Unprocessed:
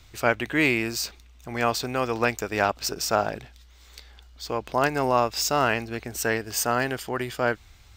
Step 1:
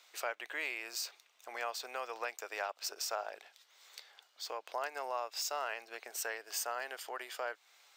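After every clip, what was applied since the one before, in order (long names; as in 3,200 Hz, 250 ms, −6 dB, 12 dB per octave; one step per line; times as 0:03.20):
downward compressor 2.5 to 1, threshold −32 dBFS, peak gain reduction 11.5 dB
high-pass filter 520 Hz 24 dB per octave
level −5 dB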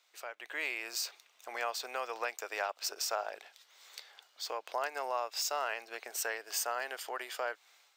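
automatic gain control gain up to 11 dB
level −8 dB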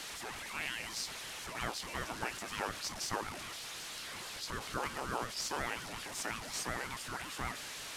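linear delta modulator 64 kbit/s, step −35.5 dBFS
ring modulator whose carrier an LFO sweeps 420 Hz, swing 65%, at 5.5 Hz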